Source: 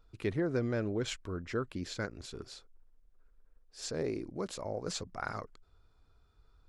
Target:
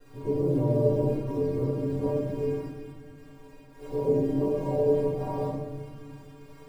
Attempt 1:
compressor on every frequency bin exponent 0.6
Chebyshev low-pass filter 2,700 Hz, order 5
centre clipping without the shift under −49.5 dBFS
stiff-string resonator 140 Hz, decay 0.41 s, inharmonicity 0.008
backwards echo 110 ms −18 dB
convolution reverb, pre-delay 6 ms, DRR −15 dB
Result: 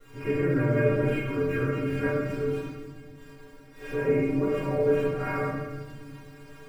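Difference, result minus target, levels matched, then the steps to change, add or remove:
2,000 Hz band +18.5 dB
change: Chebyshev low-pass filter 1,000 Hz, order 5

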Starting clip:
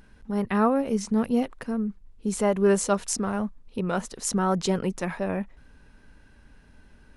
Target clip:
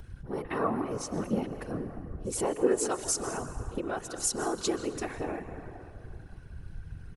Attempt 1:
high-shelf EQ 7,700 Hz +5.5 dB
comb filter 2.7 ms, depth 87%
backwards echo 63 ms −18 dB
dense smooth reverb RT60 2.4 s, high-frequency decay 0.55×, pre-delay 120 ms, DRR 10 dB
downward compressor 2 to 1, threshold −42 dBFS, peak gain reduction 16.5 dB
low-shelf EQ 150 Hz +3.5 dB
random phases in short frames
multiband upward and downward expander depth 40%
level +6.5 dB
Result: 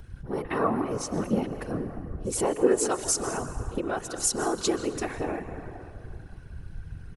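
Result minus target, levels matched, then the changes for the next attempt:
downward compressor: peak gain reduction −4 dB
change: downward compressor 2 to 1, threshold −49.5 dBFS, peak gain reduction 20 dB

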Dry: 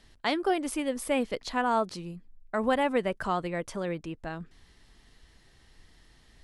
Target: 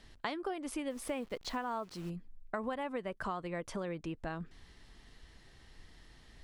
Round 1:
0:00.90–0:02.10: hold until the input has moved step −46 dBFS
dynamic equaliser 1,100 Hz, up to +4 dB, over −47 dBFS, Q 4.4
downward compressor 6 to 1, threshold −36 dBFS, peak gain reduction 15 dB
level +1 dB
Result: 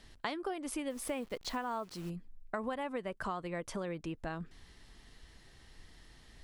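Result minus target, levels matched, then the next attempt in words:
8,000 Hz band +3.0 dB
0:00.90–0:02.10: hold until the input has moved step −46 dBFS
dynamic equaliser 1,100 Hz, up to +4 dB, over −47 dBFS, Q 4.4
downward compressor 6 to 1, threshold −36 dBFS, peak gain reduction 15 dB
high-shelf EQ 7,600 Hz −6 dB
level +1 dB

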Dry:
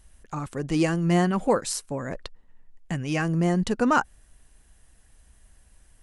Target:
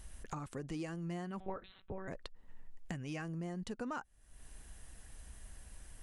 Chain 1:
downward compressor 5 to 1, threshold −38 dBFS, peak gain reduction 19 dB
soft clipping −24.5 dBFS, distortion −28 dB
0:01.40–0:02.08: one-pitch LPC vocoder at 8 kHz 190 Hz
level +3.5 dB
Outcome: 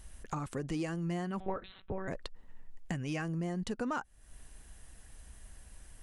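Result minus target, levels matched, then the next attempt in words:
downward compressor: peak gain reduction −6 dB
downward compressor 5 to 1, threshold −45.5 dBFS, peak gain reduction 25 dB
soft clipping −24.5 dBFS, distortion −37 dB
0:01.40–0:02.08: one-pitch LPC vocoder at 8 kHz 190 Hz
level +3.5 dB

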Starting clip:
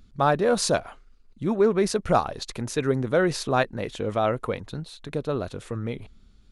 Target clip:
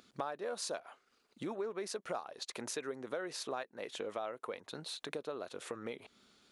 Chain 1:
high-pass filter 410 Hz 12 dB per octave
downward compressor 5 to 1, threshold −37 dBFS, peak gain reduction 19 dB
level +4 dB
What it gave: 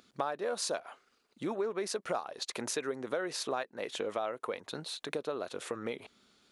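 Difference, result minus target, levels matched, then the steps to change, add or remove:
downward compressor: peak gain reduction −5 dB
change: downward compressor 5 to 1, threshold −43.5 dBFS, peak gain reduction 24.5 dB

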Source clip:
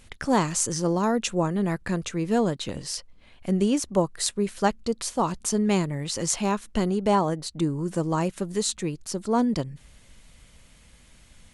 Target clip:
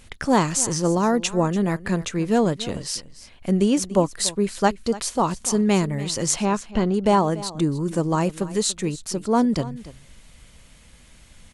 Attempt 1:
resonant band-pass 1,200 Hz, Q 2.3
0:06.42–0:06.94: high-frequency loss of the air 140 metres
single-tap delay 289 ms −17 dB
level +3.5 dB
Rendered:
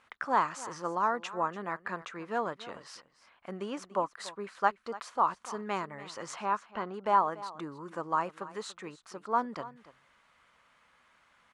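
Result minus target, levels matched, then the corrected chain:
1,000 Hz band +7.0 dB
0:06.42–0:06.94: high-frequency loss of the air 140 metres
single-tap delay 289 ms −17 dB
level +3.5 dB

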